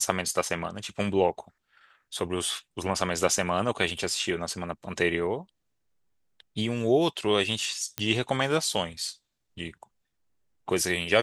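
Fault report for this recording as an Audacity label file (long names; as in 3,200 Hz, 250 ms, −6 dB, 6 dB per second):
7.980000	7.980000	click −10 dBFS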